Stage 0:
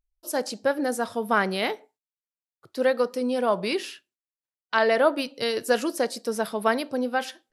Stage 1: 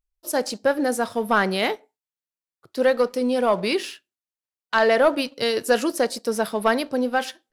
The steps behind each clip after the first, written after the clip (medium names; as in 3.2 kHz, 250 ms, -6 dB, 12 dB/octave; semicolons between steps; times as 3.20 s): waveshaping leveller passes 1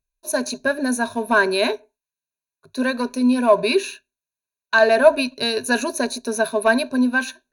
rippled EQ curve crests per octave 1.5, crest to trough 18 dB; trim -1 dB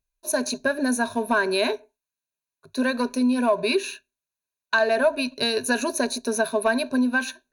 compression 3:1, threshold -19 dBFS, peak gain reduction 9.5 dB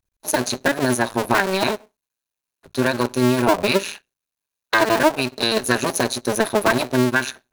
cycle switcher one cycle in 2, muted; trim +6.5 dB